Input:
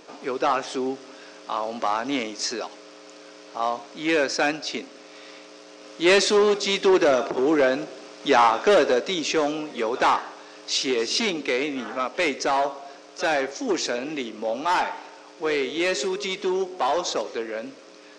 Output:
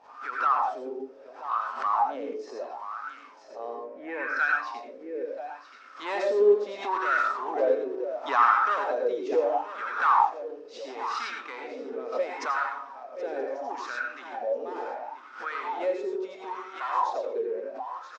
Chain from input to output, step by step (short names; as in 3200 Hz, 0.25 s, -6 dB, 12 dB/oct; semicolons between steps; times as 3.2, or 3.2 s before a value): 3.75–4.37 graphic EQ 250/500/1000/2000/4000/8000 Hz +7/+4/-7/+7/-12/-12 dB; echo 0.979 s -11.5 dB; hum 50 Hz, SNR 21 dB; tilt +2.5 dB/oct; small resonant body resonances 250/1800 Hz, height 7 dB; reverb RT60 0.40 s, pre-delay 78 ms, DRR 0 dB; wah 0.73 Hz 430–1400 Hz, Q 7.9; backwards sustainer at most 120 dB/s; gain +4 dB